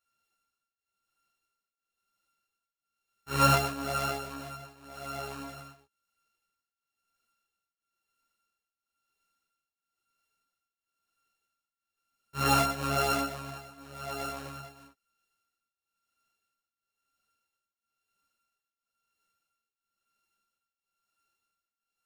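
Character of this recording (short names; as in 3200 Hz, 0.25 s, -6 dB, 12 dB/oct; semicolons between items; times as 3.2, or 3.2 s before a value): a buzz of ramps at a fixed pitch in blocks of 32 samples; tremolo triangle 1 Hz, depth 90%; a shimmering, thickened sound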